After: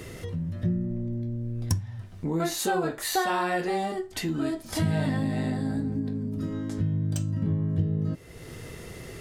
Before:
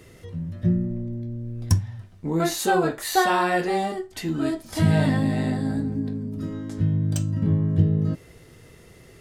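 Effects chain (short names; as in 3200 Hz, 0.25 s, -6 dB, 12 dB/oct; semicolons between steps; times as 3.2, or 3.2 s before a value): compressor 2:1, threshold -44 dBFS, peak gain reduction 16.5 dB; gain +8.5 dB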